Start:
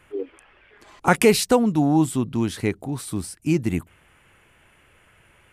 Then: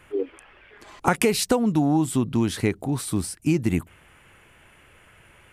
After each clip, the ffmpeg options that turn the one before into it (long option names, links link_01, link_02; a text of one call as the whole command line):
ffmpeg -i in.wav -af "acompressor=threshold=-19dB:ratio=10,volume=3dB" out.wav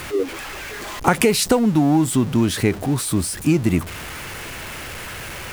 ffmpeg -i in.wav -af "aeval=exprs='val(0)+0.5*0.0282*sgn(val(0))':channel_layout=same,volume=3.5dB" out.wav